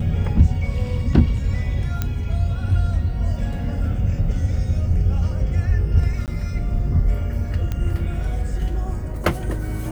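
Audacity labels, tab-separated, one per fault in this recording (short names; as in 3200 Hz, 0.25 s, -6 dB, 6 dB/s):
2.020000	2.020000	pop -9 dBFS
6.260000	6.280000	gap 18 ms
7.720000	7.720000	pop -13 dBFS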